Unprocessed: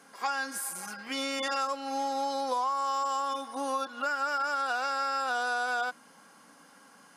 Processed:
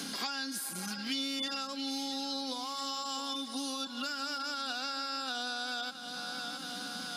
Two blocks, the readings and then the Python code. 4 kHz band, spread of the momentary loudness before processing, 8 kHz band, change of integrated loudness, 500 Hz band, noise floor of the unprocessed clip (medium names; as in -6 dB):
+5.5 dB, 5 LU, -0.5 dB, -4.5 dB, -10.0 dB, -57 dBFS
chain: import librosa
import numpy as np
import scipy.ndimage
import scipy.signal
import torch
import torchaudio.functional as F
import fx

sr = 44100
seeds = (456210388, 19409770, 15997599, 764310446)

y = fx.graphic_eq(x, sr, hz=(250, 500, 1000, 2000, 4000, 8000), db=(5, -9, -12, -7, 10, -5))
y = fx.echo_feedback(y, sr, ms=671, feedback_pct=48, wet_db=-14.0)
y = fx.band_squash(y, sr, depth_pct=100)